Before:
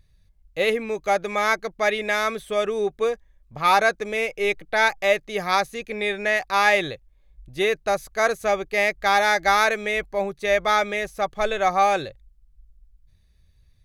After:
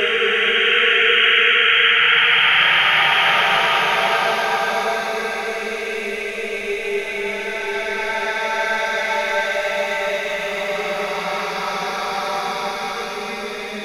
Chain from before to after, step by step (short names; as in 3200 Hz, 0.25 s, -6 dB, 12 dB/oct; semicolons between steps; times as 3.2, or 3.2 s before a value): thin delay 0.128 s, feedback 59%, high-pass 2100 Hz, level -4.5 dB; painted sound noise, 3–3.6, 1300–3300 Hz -14 dBFS; Paulstretch 4.5×, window 1.00 s, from 2.88